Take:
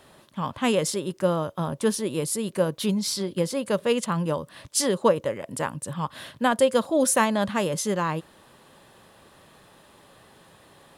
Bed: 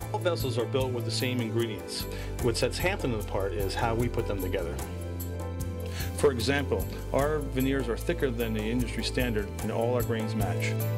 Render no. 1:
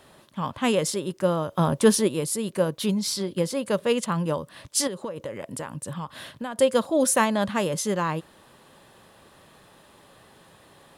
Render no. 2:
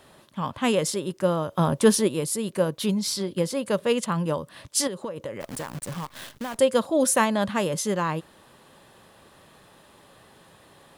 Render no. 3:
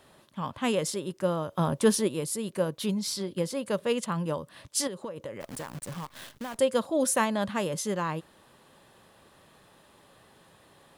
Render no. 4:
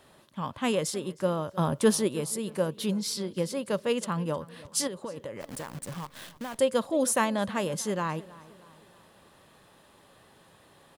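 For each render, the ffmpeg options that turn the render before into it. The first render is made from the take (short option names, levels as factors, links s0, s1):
-filter_complex "[0:a]asplit=3[s0][s1][s2];[s0]afade=t=out:st=1.51:d=0.02[s3];[s1]acontrast=56,afade=t=in:st=1.51:d=0.02,afade=t=out:st=2.07:d=0.02[s4];[s2]afade=t=in:st=2.07:d=0.02[s5];[s3][s4][s5]amix=inputs=3:normalize=0,asettb=1/sr,asplit=3[s6][s7][s8];[s6]atrim=end=4.874[s9];[s7]atrim=start=4.87:end=6.58,asetpts=PTS-STARTPTS,afade=t=in:d=0.004:c=qsin,afade=t=out:st=1.706:d=0.004:c=qsin,acompressor=threshold=0.0398:ratio=16:attack=3.2:release=140:knee=1:detection=peak[s10];[s8]atrim=start=6.576[s11];[s9][s10]acrossfade=d=0.004:c1=hsin:c2=qsin[s12];[s12][s11]acrossfade=d=0.004:c1=qsin:c2=hsin"
-filter_complex "[0:a]asplit=3[s0][s1][s2];[s0]afade=t=out:st=5.4:d=0.02[s3];[s1]acrusher=bits=7:dc=4:mix=0:aa=0.000001,afade=t=in:st=5.4:d=0.02,afade=t=out:st=6.57:d=0.02[s4];[s2]afade=t=in:st=6.57:d=0.02[s5];[s3][s4][s5]amix=inputs=3:normalize=0"
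-af "volume=0.596"
-filter_complex "[0:a]asplit=2[s0][s1];[s1]adelay=312,lowpass=f=4200:p=1,volume=0.1,asplit=2[s2][s3];[s3]adelay=312,lowpass=f=4200:p=1,volume=0.49,asplit=2[s4][s5];[s5]adelay=312,lowpass=f=4200:p=1,volume=0.49,asplit=2[s6][s7];[s7]adelay=312,lowpass=f=4200:p=1,volume=0.49[s8];[s0][s2][s4][s6][s8]amix=inputs=5:normalize=0"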